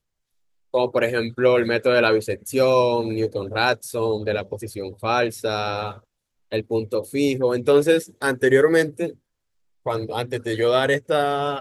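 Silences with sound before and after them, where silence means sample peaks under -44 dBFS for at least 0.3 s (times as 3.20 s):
5.99–6.52 s
9.15–9.86 s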